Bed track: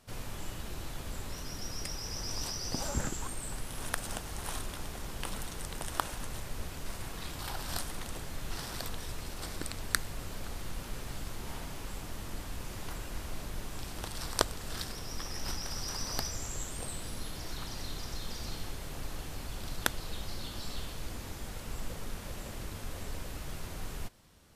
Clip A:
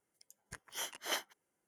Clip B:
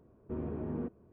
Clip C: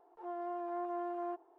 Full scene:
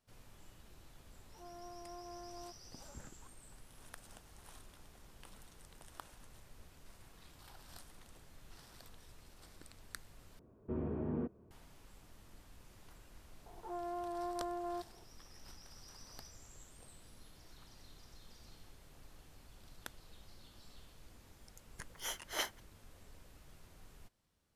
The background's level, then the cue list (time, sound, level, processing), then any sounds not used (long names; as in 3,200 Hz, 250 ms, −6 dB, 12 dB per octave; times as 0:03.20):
bed track −18.5 dB
0:01.16: mix in C −12 dB
0:10.39: overwrite with B −1 dB
0:13.46: mix in C −2 dB + multiband upward and downward compressor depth 40%
0:21.27: mix in A −1 dB